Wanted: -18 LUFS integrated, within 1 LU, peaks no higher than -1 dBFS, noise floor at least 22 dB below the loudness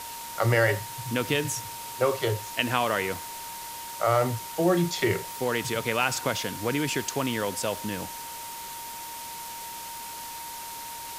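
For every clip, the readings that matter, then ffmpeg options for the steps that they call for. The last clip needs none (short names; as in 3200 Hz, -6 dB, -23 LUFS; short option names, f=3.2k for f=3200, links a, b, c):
steady tone 930 Hz; tone level -39 dBFS; noise floor -39 dBFS; noise floor target -51 dBFS; loudness -28.5 LUFS; peak -8.0 dBFS; loudness target -18.0 LUFS
-> -af "bandreject=f=930:w=30"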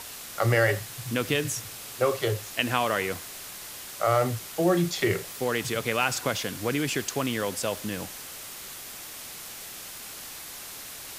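steady tone none; noise floor -41 dBFS; noise floor target -51 dBFS
-> -af "afftdn=nr=10:nf=-41"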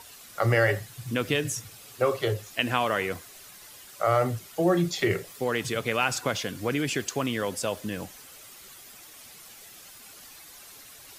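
noise floor -49 dBFS; noise floor target -50 dBFS
-> -af "afftdn=nr=6:nf=-49"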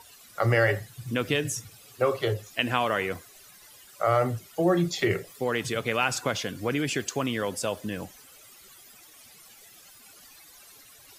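noise floor -53 dBFS; loudness -27.5 LUFS; peak -8.5 dBFS; loudness target -18.0 LUFS
-> -af "volume=9.5dB,alimiter=limit=-1dB:level=0:latency=1"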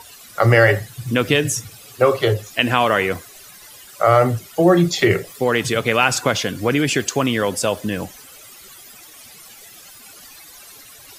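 loudness -18.0 LUFS; peak -1.0 dBFS; noise floor -43 dBFS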